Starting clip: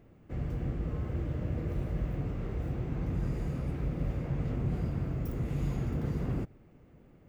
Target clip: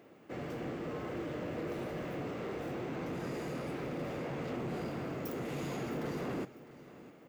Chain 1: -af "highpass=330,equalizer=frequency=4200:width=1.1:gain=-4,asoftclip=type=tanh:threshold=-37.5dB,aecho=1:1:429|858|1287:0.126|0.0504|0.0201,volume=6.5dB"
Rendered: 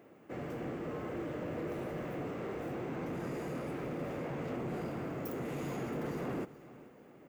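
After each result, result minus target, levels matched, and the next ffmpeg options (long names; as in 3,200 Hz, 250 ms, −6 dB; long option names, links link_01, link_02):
echo 226 ms early; 4,000 Hz band −4.5 dB
-af "highpass=330,equalizer=frequency=4200:width=1.1:gain=-4,asoftclip=type=tanh:threshold=-37.5dB,aecho=1:1:655|1310|1965:0.126|0.0504|0.0201,volume=6.5dB"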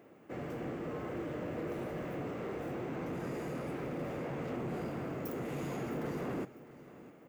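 4,000 Hz band −4.5 dB
-af "highpass=330,equalizer=frequency=4200:width=1.1:gain=2.5,asoftclip=type=tanh:threshold=-37.5dB,aecho=1:1:655|1310|1965:0.126|0.0504|0.0201,volume=6.5dB"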